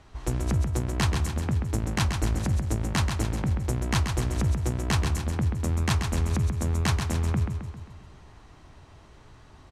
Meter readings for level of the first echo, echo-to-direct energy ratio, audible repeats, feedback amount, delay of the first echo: -6.0 dB, -4.5 dB, 6, 53%, 133 ms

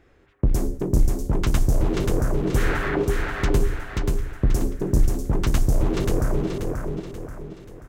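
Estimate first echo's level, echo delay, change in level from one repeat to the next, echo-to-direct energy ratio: -3.0 dB, 533 ms, -7.5 dB, -2.0 dB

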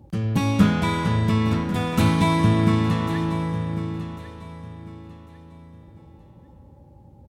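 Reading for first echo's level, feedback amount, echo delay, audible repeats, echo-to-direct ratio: -13.0 dB, 28%, 1098 ms, 2, -12.5 dB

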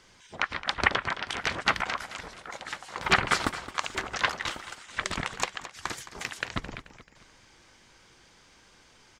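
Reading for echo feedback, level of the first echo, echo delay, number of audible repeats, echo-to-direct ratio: 43%, -14.0 dB, 217 ms, 3, -13.0 dB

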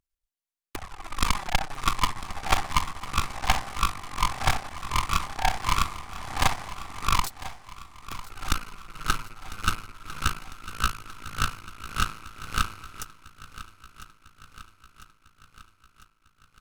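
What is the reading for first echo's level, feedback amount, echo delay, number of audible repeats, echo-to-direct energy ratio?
-16.0 dB, 60%, 1000 ms, 5, -14.0 dB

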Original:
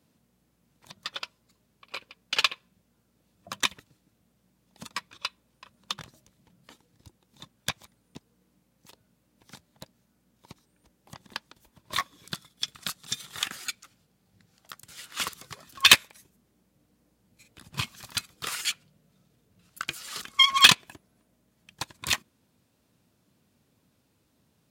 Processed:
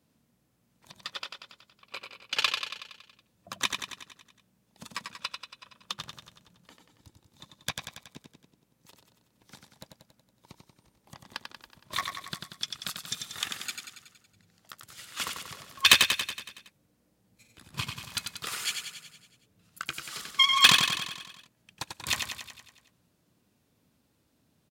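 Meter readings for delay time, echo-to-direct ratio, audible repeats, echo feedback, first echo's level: 93 ms, -3.5 dB, 7, 59%, -5.5 dB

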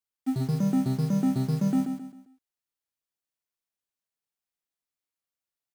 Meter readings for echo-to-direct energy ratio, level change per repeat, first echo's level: -6.5 dB, -9.0 dB, -7.0 dB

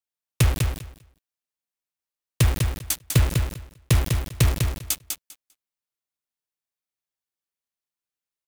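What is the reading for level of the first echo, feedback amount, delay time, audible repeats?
-5.0 dB, 16%, 199 ms, 2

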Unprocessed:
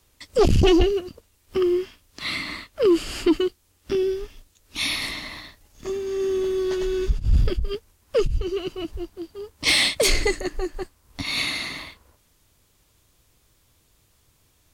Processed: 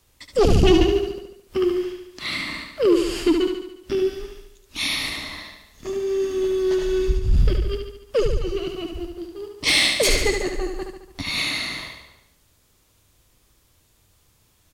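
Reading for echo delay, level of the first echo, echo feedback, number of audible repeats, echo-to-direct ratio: 72 ms, -5.5 dB, 56%, 6, -4.0 dB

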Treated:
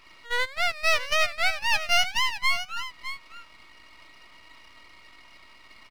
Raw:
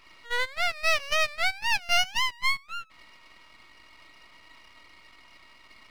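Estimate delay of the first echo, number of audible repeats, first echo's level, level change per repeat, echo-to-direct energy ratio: 609 ms, 1, -11.5 dB, no regular repeats, -11.5 dB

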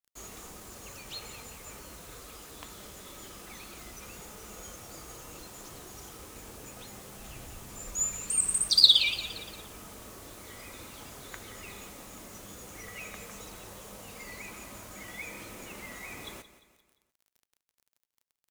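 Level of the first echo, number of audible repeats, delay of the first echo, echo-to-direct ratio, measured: -14.5 dB, 4, 174 ms, -13.5 dB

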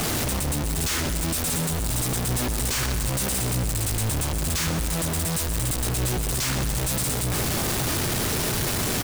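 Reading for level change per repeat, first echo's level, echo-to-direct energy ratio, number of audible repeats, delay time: -4.5 dB, -10.0 dB, -8.5 dB, 2, 130 ms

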